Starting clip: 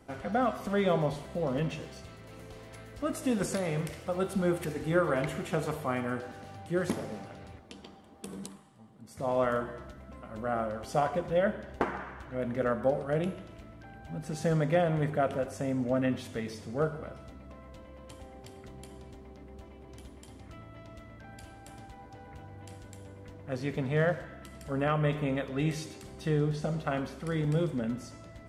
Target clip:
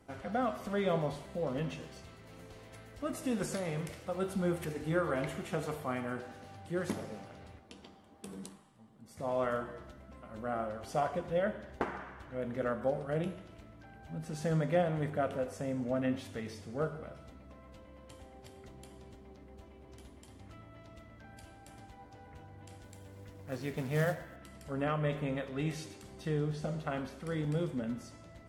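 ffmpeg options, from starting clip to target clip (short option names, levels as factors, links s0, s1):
-filter_complex "[0:a]flanger=delay=9.6:depth=3.9:regen=81:speed=0.73:shape=triangular,asettb=1/sr,asplit=3[s0][s1][s2];[s0]atrim=end=22.834[s3];[s1]atrim=start=22.83:end=24.36,asetpts=PTS-STARTPTS,afade=t=in:d=0.004:c=qsin,afade=t=out:st=1.526:d=0.004:c=qsin,acrusher=bits=5:mode=log:mix=0:aa=0.000001[s4];[s2]atrim=start=24.356[s5];[s3][s4]acrossfade=d=0.004:c1=hsin:c2=qsin[s6];[s6][s5]acrossfade=d=0.004:c1=qsin:c2=hsin" -ar 48000 -c:a aac -b:a 64k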